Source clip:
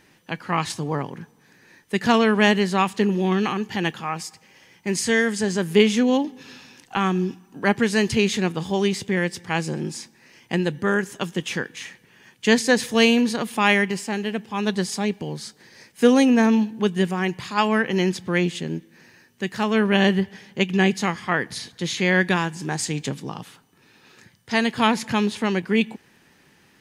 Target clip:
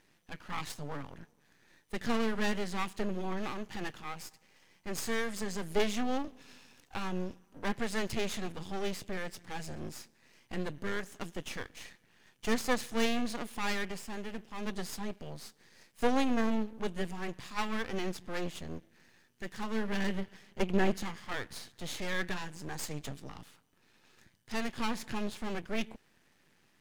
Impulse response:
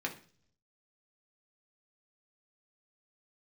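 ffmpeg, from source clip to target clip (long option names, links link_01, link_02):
-filter_complex "[0:a]asettb=1/sr,asplit=3[link_01][link_02][link_03];[link_01]atrim=end=20.604[link_04];[link_02]atrim=start=20.6:end=21.03,asetpts=PTS-STARTPTS,afade=type=in:duration=0.004:curve=qsin,afade=type=out:start_time=0.426:duration=0.004:curve=qsin,equalizer=frequency=370:width=0.36:gain=7[link_05];[link_03]atrim=start=21.026[link_06];[link_04][link_05]acrossfade=duration=0.004:curve1=hsin:curve2=qsin[link_07];[link_07][link_06]acrossfade=duration=0.004:curve1=qsin:curve2=hsin,aeval=exprs='max(val(0),0)':channel_layout=same,volume=-8dB"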